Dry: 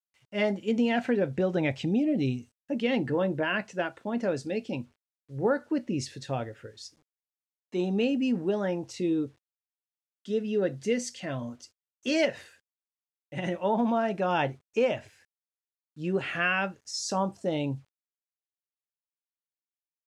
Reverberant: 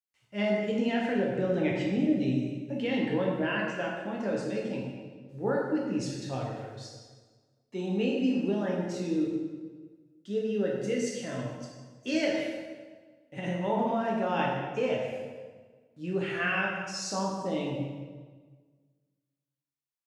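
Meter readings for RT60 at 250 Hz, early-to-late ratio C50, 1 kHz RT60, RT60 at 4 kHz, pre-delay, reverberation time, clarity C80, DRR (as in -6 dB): 1.6 s, 1.0 dB, 1.4 s, 1.1 s, 7 ms, 1.5 s, 3.0 dB, -2.5 dB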